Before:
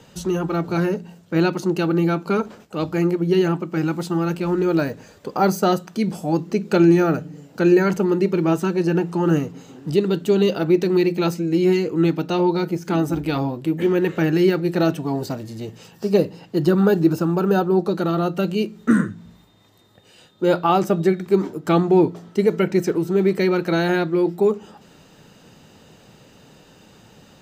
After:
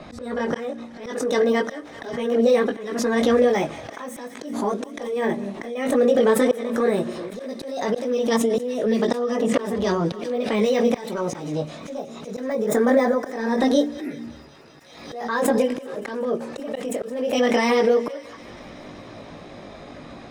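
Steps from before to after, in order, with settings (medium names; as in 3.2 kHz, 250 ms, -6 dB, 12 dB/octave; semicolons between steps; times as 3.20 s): level-controlled noise filter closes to 2.2 kHz, open at -14 dBFS; peaking EQ 410 Hz +3.5 dB 0.38 oct; in parallel at -0.5 dB: peak limiter -12.5 dBFS, peak gain reduction 9.5 dB; on the sum: compression 8:1, threshold -18 dBFS, peak gain reduction 13 dB; chorus voices 6, 0.65 Hz, delay 25 ms, depth 2.7 ms; slow attack 594 ms; on a send: thinning echo 255 ms, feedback 84%, high-pass 700 Hz, level -19 dB; on the sum: speed mistake 33 rpm record played at 45 rpm; swell ahead of each attack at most 57 dB/s; trim +6 dB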